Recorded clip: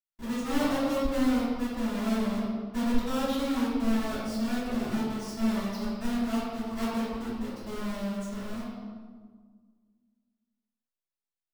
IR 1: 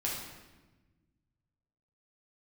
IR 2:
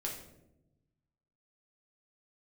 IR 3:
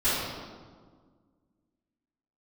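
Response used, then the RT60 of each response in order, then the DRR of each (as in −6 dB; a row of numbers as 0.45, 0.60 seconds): 3; 1.2, 0.90, 1.7 seconds; −4.5, −2.0, −17.0 decibels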